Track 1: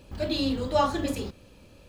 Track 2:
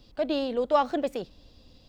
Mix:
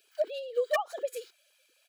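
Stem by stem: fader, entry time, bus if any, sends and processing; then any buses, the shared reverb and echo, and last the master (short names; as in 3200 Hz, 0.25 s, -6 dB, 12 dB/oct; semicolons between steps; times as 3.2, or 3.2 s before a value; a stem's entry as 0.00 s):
-15.0 dB, 0.00 s, no send, negative-ratio compressor -32 dBFS, ratio -0.5; steep high-pass 1400 Hz 36 dB/oct; comb 1.3 ms, depth 57%
-3.5 dB, 0.00 s, no send, sine-wave speech; wavefolder -15.5 dBFS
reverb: off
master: HPF 190 Hz 24 dB/oct; high shelf 7000 Hz +10 dB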